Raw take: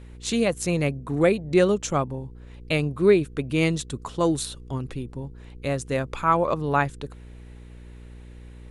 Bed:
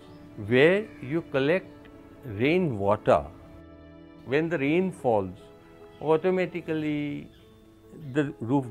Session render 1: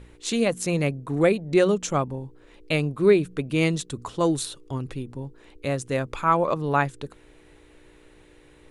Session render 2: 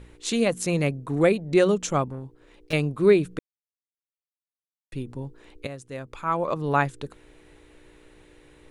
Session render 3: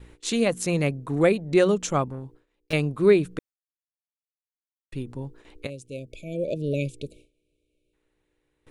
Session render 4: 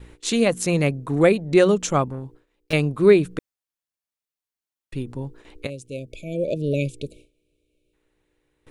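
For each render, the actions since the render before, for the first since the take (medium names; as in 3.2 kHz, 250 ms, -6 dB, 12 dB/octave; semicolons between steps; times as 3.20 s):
de-hum 60 Hz, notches 4
2.09–2.73 s: valve stage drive 29 dB, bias 0.5; 3.39–4.92 s: mute; 5.67–6.70 s: fade in quadratic, from -12 dB
5.70–7.93 s: spectral selection erased 650–2200 Hz; gate with hold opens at -40 dBFS
trim +3.5 dB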